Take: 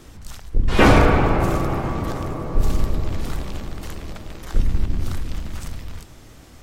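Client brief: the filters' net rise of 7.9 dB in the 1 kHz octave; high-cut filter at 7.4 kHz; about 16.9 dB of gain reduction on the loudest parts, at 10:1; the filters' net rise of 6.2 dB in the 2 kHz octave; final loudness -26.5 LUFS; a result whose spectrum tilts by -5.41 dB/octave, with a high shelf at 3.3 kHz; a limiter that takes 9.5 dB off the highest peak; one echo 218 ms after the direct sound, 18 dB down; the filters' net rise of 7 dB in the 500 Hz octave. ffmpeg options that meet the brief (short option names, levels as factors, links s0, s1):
-af "lowpass=7400,equalizer=f=500:t=o:g=6.5,equalizer=f=1000:t=o:g=6.5,equalizer=f=2000:t=o:g=3.5,highshelf=f=3300:g=6,acompressor=threshold=0.0891:ratio=10,alimiter=limit=0.0841:level=0:latency=1,aecho=1:1:218:0.126,volume=2.11"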